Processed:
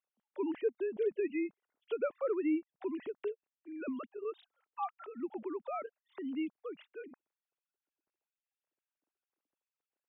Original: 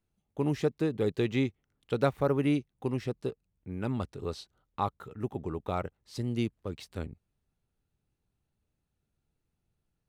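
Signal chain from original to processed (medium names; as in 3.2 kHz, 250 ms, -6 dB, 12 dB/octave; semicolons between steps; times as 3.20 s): formants replaced by sine waves; in parallel at +1.5 dB: compression, threshold -39 dBFS, peak gain reduction 17.5 dB; on the sum: trim -8 dB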